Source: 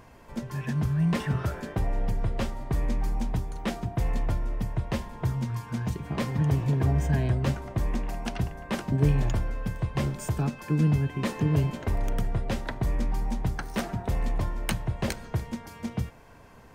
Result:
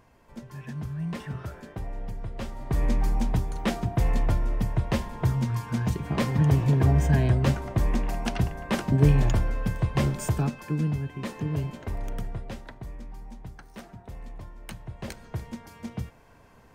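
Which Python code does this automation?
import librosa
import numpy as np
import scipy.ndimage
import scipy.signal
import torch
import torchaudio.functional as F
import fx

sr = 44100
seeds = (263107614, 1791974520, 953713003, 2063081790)

y = fx.gain(x, sr, db=fx.line((2.32, -7.5), (2.85, 3.5), (10.26, 3.5), (10.94, -5.0), (12.23, -5.0), (12.98, -13.5), (14.55, -13.5), (15.45, -3.5)))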